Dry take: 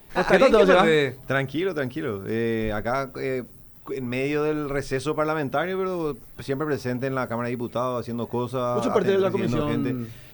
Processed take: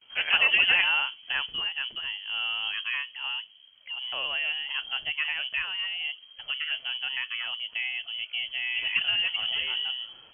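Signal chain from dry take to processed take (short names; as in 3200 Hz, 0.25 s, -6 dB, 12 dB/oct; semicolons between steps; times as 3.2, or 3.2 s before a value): gate with hold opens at -41 dBFS; inverted band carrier 3200 Hz; gain -6 dB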